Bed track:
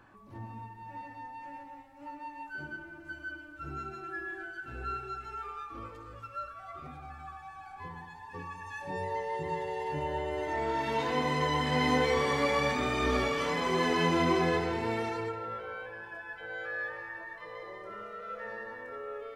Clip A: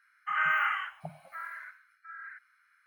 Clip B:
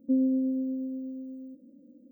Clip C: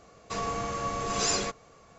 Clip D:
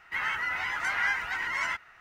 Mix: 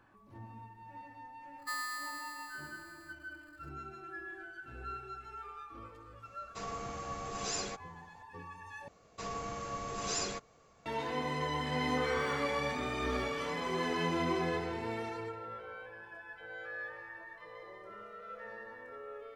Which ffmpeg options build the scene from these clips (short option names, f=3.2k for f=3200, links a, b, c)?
-filter_complex "[3:a]asplit=2[a][b];[0:a]volume=-6dB[c];[2:a]aeval=exprs='val(0)*sgn(sin(2*PI*1500*n/s))':c=same[d];[c]asplit=2[e][f];[e]atrim=end=8.884[g];[b]atrim=end=1.98,asetpts=PTS-STARTPTS,volume=-8dB[h];[f]atrim=start=10.856[i];[d]atrim=end=2.11,asetpts=PTS-STARTPTS,volume=-14dB,afade=t=in:d=0.004:c=hsin,afade=t=out:st=2.106:d=0.004:c=hsin,adelay=1580[j];[a]atrim=end=1.98,asetpts=PTS-STARTPTS,volume=-9.5dB,afade=t=in:d=0.004:c=hsin,afade=t=out:st=1.976:d=0.004:c=hsin,adelay=6250[k];[1:a]atrim=end=2.86,asetpts=PTS-STARTPTS,volume=-14dB,afade=t=in:d=0.004:c=hsin,afade=t=out:st=2.856:d=0.004:c=hsin,adelay=11690[l];[g][h]acrossfade=d=0.004:c1=hsin:c2=hsin[m];[m][i]acrossfade=d=0.004:c1=hsin:c2=hsin[n];[n][j][k][l]amix=inputs=4:normalize=0"